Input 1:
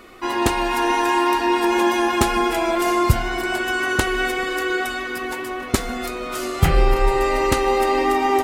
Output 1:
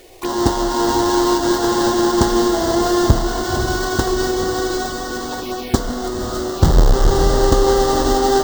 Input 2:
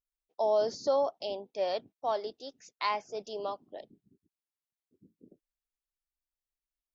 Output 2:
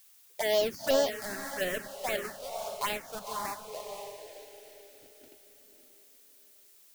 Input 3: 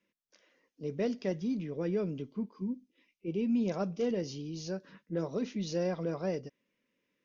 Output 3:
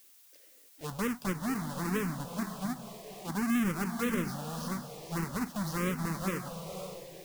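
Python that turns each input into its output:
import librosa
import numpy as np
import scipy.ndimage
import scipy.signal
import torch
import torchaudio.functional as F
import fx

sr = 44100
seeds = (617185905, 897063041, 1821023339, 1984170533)

y = fx.halfwave_hold(x, sr)
y = fx.echo_diffused(y, sr, ms=523, feedback_pct=41, wet_db=-7.0)
y = fx.env_phaser(y, sr, low_hz=170.0, high_hz=2400.0, full_db=-18.5)
y = fx.dmg_noise_colour(y, sr, seeds[0], colour='blue', level_db=-58.0)
y = y * librosa.db_to_amplitude(-1.0)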